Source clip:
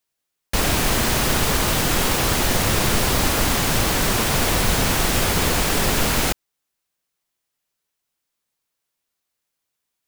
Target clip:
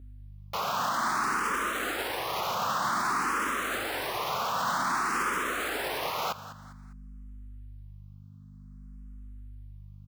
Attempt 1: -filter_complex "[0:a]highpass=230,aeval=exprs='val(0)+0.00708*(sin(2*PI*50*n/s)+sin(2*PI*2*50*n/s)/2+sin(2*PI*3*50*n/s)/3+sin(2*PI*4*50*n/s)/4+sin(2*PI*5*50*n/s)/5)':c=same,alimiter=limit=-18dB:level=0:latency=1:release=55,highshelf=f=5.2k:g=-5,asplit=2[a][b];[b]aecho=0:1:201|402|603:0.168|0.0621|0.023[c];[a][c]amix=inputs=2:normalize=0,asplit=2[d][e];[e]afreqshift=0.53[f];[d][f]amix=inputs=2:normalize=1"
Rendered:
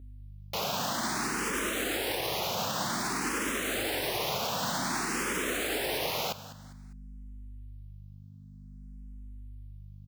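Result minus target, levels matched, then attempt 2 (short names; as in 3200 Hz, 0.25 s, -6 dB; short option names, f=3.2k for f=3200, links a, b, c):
1000 Hz band -5.0 dB
-filter_complex "[0:a]highpass=230,equalizer=f=1.2k:t=o:w=0.98:g=15,aeval=exprs='val(0)+0.00708*(sin(2*PI*50*n/s)+sin(2*PI*2*50*n/s)/2+sin(2*PI*3*50*n/s)/3+sin(2*PI*4*50*n/s)/4+sin(2*PI*5*50*n/s)/5)':c=same,alimiter=limit=-18dB:level=0:latency=1:release=55,highshelf=f=5.2k:g=-5,asplit=2[a][b];[b]aecho=0:1:201|402|603:0.168|0.0621|0.023[c];[a][c]amix=inputs=2:normalize=0,asplit=2[d][e];[e]afreqshift=0.53[f];[d][f]amix=inputs=2:normalize=1"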